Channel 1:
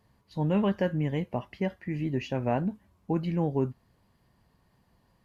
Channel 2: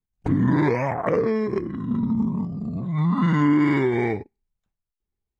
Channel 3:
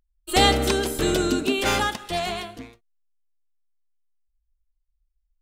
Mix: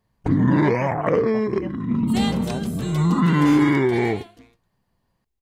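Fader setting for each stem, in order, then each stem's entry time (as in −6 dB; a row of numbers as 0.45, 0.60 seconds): −5.0, +2.0, −10.5 decibels; 0.00, 0.00, 1.80 seconds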